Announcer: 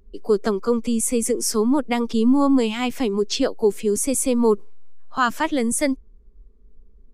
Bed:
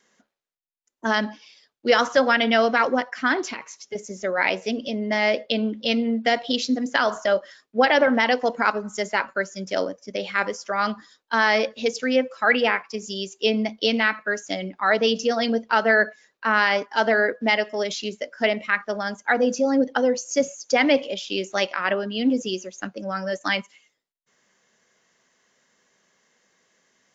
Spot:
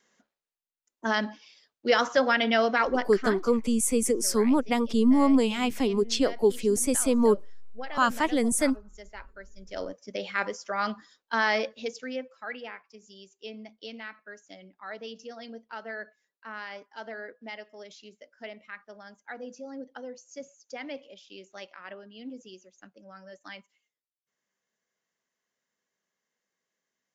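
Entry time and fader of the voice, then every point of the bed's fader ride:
2.80 s, -3.5 dB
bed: 3.12 s -4.5 dB
3.51 s -21 dB
9.53 s -21 dB
9.93 s -5.5 dB
11.51 s -5.5 dB
12.6 s -20 dB

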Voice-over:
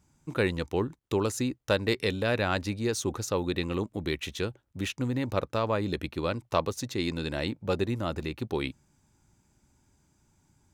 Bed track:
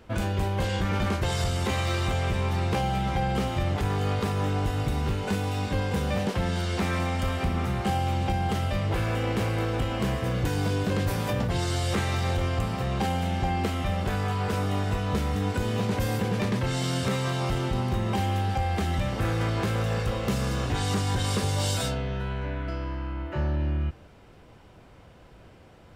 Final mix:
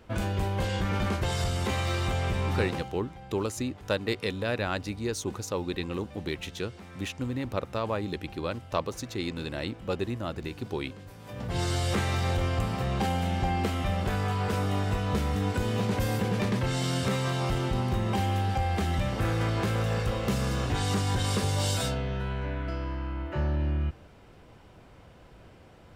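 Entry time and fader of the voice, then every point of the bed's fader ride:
2.20 s, -2.5 dB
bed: 2.63 s -2 dB
2.99 s -20 dB
11.19 s -20 dB
11.6 s -1 dB

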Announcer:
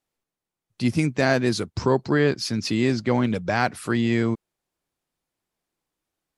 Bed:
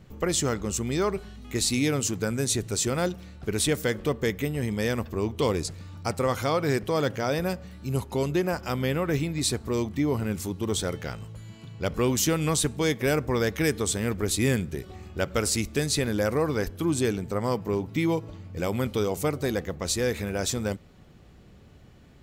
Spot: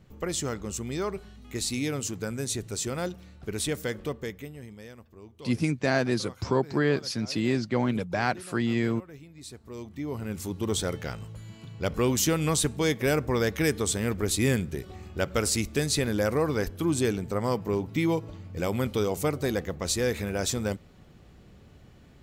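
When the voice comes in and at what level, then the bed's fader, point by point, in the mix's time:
4.65 s, -4.5 dB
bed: 4.03 s -5 dB
4.96 s -20.5 dB
9.28 s -20.5 dB
10.58 s -0.5 dB

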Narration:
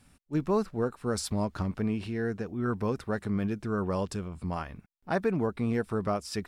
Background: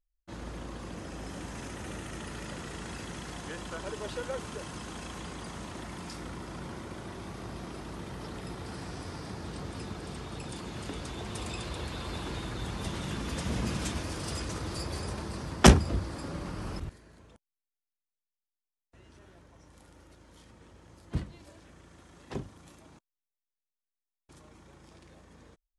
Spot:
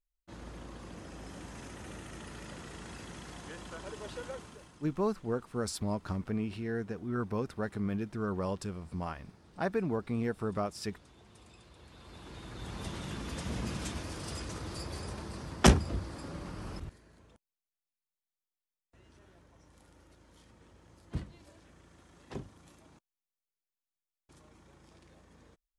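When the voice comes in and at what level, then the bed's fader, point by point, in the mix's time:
4.50 s, -4.0 dB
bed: 4.29 s -5.5 dB
4.87 s -20 dB
11.74 s -20 dB
12.77 s -4.5 dB

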